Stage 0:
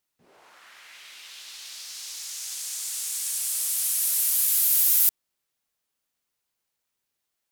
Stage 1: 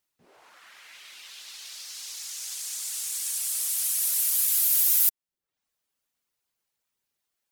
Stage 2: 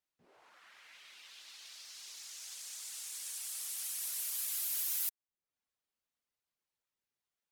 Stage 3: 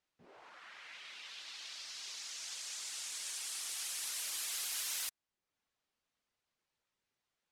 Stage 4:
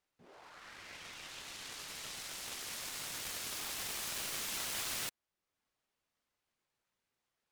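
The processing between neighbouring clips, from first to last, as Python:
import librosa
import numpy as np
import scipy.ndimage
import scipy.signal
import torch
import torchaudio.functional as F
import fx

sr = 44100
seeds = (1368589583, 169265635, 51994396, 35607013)

y1 = fx.dereverb_blind(x, sr, rt60_s=0.51)
y2 = fx.high_shelf(y1, sr, hz=6800.0, db=-8.0)
y2 = y2 * 10.0 ** (-7.5 / 20.0)
y3 = fx.air_absorb(y2, sr, metres=63.0)
y3 = y3 * 10.0 ** (7.0 / 20.0)
y4 = fx.noise_mod_delay(y3, sr, seeds[0], noise_hz=2100.0, depth_ms=0.041)
y4 = y4 * 10.0 ** (1.0 / 20.0)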